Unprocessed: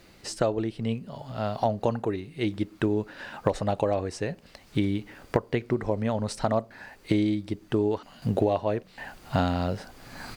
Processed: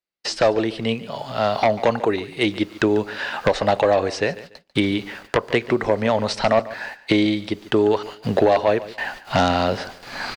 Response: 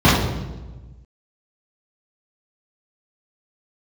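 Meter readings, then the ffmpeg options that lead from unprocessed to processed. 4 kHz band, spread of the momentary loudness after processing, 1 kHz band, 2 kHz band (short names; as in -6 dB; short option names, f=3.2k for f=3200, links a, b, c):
+13.5 dB, 10 LU, +9.5 dB, +13.5 dB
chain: -filter_complex "[0:a]agate=range=-50dB:threshold=-46dB:ratio=16:detection=peak,highshelf=f=3.8k:g=10,acrossover=split=5900[a][b];[b]acompressor=threshold=-54dB:ratio=4:attack=1:release=60[c];[a][c]amix=inputs=2:normalize=0,equalizer=f=210:w=1.5:g=2.5,acrossover=split=390|5100[d][e][f];[e]aeval=exprs='0.299*sin(PI/2*2.51*val(0)/0.299)':c=same[g];[d][g][f]amix=inputs=3:normalize=0,aecho=1:1:144|288:0.141|0.0339"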